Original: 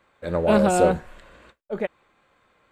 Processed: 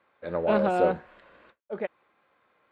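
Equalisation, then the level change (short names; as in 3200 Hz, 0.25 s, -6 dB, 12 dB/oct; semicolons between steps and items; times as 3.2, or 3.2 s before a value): HPF 330 Hz 6 dB/oct; air absorption 380 m; high shelf 5600 Hz +9 dB; -2.0 dB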